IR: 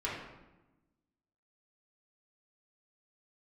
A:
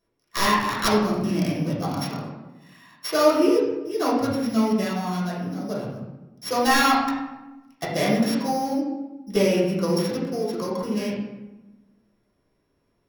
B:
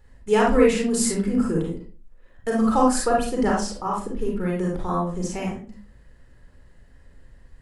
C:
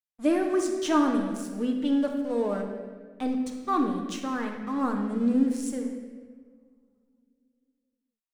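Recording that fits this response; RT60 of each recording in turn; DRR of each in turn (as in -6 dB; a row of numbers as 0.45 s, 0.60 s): A; 1.0 s, 0.40 s, 1.6 s; -7.5 dB, -2.5 dB, 2.0 dB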